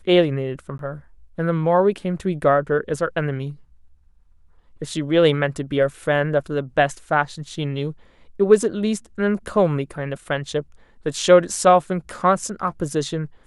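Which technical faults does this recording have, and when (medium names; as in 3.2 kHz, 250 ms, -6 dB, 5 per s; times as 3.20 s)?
0.78–0.79 s: dropout 12 ms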